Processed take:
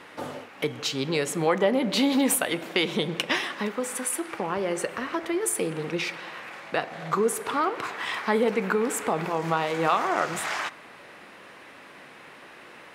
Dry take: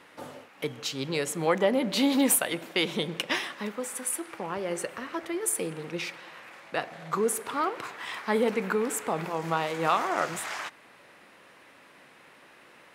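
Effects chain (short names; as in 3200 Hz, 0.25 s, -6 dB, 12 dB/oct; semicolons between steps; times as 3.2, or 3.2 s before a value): high shelf 7500 Hz -6 dB; compressor 1.5:1, threshold -36 dBFS, peak gain reduction 6.5 dB; on a send: reverb RT60 0.80 s, pre-delay 3 ms, DRR 16 dB; on the sum: gain +7.5 dB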